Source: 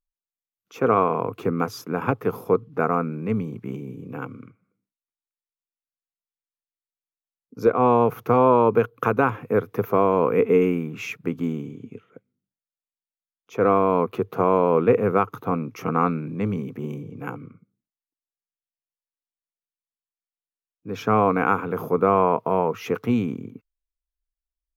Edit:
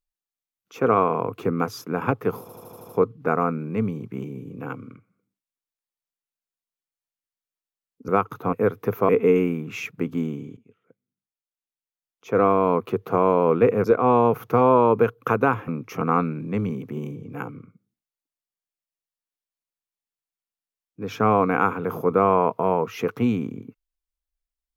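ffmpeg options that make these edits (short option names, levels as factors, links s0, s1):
-filter_complex "[0:a]asplit=13[s0][s1][s2][s3][s4][s5][s6][s7][s8][s9][s10][s11][s12];[s0]atrim=end=2.492[s13];[s1]atrim=start=2.408:end=2.492[s14];[s2]atrim=start=2.408:end=2.492[s15];[s3]atrim=start=2.408:end=2.492[s16];[s4]atrim=start=2.408:end=2.492[s17];[s5]atrim=start=2.408:end=2.492[s18];[s6]atrim=start=2.408:end=7.602[s19];[s7]atrim=start=15.098:end=15.552[s20];[s8]atrim=start=9.438:end=10.002[s21];[s9]atrim=start=10.348:end=11.83,asetpts=PTS-STARTPTS,afade=t=out:st=1.478:d=0.004:c=hsin:silence=0.11885[s22];[s10]atrim=start=11.83:end=15.102,asetpts=PTS-STARTPTS,afade=t=in:d=1.81:silence=0.11885[s23];[s11]atrim=start=7.598:end=9.442[s24];[s12]atrim=start=15.548[s25];[s13][s14]acrossfade=d=0.004:c1=hsin:c2=hsin[s26];[s26][s15]acrossfade=d=0.004:c1=hsin:c2=hsin[s27];[s27][s16]acrossfade=d=0.004:c1=hsin:c2=hsin[s28];[s28][s17]acrossfade=d=0.004:c1=hsin:c2=hsin[s29];[s29][s18]acrossfade=d=0.004:c1=hsin:c2=hsin[s30];[s30][s19]acrossfade=d=0.004:c1=hsin:c2=hsin[s31];[s31][s20]acrossfade=d=0.004:c1=hsin:c2=hsin[s32];[s32][s21]acrossfade=d=0.004:c1=hsin:c2=hsin[s33];[s22][s23]concat=n=2:v=0:a=1[s34];[s33][s34]acrossfade=d=0.004:c1=hsin:c2=hsin[s35];[s35][s24]acrossfade=d=0.004:c1=hsin:c2=hsin[s36];[s36][s25]acrossfade=d=0.004:c1=hsin:c2=hsin"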